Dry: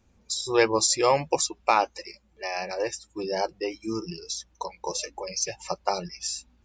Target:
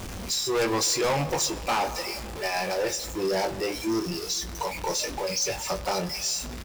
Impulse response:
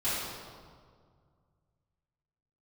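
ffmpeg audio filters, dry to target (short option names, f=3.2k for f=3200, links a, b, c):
-filter_complex "[0:a]aeval=exprs='val(0)+0.5*0.0282*sgn(val(0))':c=same,asplit=2[a][b];[b]adelay=21,volume=-7dB[c];[a][c]amix=inputs=2:normalize=0,asplit=2[d][e];[1:a]atrim=start_sample=2205,adelay=8[f];[e][f]afir=irnorm=-1:irlink=0,volume=-25dB[g];[d][g]amix=inputs=2:normalize=0,volume=22dB,asoftclip=hard,volume=-22dB"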